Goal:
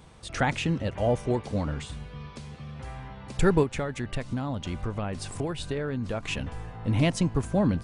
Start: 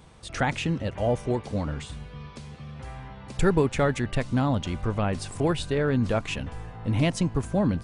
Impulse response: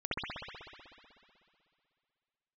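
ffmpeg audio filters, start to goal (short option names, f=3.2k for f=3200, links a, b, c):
-filter_complex "[0:a]asettb=1/sr,asplit=3[a][b][c];[a]atrim=end=3.634[d];[b]atrim=start=3.63:end=6.23,asetpts=PTS-STARTPTS,afade=t=in:d=0.004:c=qsin,afade=t=out:st=2.596:d=0.004:c=qsin,acompressor=threshold=-27dB:ratio=6[e];[c]atrim=start=6.226[f];[d][e]acrossfade=d=0.004:c1=hsin:c2=qsin[g];[g][f]acrossfade=d=0.004:c1=qsin:c2=hsin"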